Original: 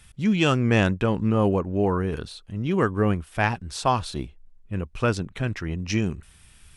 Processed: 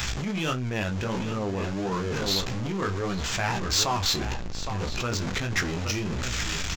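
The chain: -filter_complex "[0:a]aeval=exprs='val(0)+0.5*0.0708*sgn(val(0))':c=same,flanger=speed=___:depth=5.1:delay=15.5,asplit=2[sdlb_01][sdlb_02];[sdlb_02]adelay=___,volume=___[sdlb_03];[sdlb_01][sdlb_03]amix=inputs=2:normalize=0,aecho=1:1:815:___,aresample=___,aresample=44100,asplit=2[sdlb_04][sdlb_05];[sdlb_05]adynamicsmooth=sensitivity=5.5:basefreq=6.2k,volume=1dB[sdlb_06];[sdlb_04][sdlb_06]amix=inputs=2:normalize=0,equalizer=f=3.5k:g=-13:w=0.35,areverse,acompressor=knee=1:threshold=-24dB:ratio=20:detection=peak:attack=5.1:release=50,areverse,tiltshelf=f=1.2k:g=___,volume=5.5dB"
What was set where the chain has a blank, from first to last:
1.6, 32, -11dB, 0.224, 16000, -9.5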